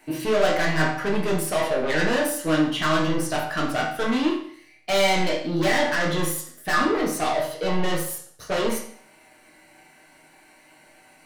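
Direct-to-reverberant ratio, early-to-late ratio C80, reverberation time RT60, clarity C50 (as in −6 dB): −3.5 dB, 9.0 dB, 0.55 s, 5.0 dB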